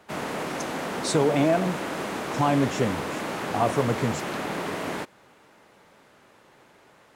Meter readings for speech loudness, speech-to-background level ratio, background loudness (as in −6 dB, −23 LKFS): −25.5 LKFS, 5.5 dB, −31.0 LKFS